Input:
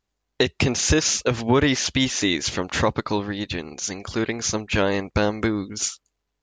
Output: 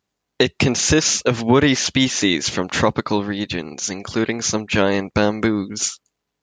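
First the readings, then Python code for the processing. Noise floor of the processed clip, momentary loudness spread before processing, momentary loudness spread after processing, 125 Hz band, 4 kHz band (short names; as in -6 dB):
-79 dBFS, 9 LU, 9 LU, +2.5 dB, +3.5 dB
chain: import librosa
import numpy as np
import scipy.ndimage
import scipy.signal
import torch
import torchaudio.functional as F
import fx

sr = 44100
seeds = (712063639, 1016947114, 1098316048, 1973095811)

y = scipy.signal.sosfilt(scipy.signal.butter(2, 100.0, 'highpass', fs=sr, output='sos'), x)
y = fx.peak_eq(y, sr, hz=190.0, db=2.5, octaves=0.98)
y = y * 10.0 ** (3.5 / 20.0)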